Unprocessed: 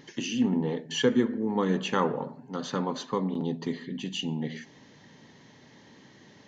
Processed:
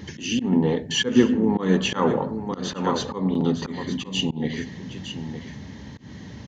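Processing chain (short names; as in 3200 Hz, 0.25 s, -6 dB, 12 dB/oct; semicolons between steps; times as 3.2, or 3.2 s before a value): echo 0.912 s -10.5 dB; band noise 66–250 Hz -47 dBFS; auto swell 0.149 s; gain +8 dB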